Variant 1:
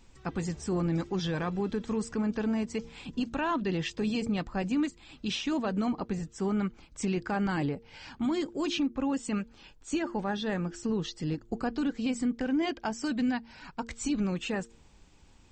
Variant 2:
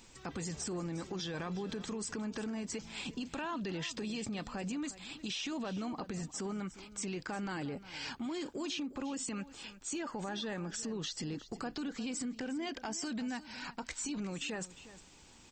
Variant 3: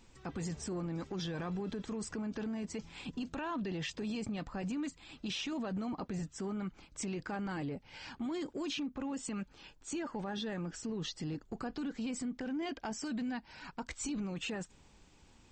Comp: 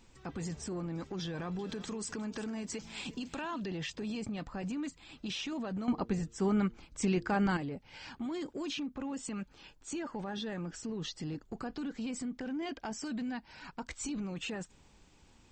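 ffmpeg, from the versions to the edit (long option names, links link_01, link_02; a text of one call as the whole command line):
ffmpeg -i take0.wav -i take1.wav -i take2.wav -filter_complex "[2:a]asplit=3[link_01][link_02][link_03];[link_01]atrim=end=1.592[link_04];[1:a]atrim=start=1.588:end=3.662[link_05];[link_02]atrim=start=3.658:end=5.882[link_06];[0:a]atrim=start=5.878:end=7.572[link_07];[link_03]atrim=start=7.568[link_08];[link_04][link_05]acrossfade=duration=0.004:curve1=hsin:curve2=hsin[link_09];[link_09][link_06]acrossfade=duration=0.004:curve1=hsin:curve2=hsin[link_10];[link_10][link_07]acrossfade=duration=0.004:curve1=hsin:curve2=hsin[link_11];[link_11][link_08]acrossfade=duration=0.004:curve1=hsin:curve2=hsin" out.wav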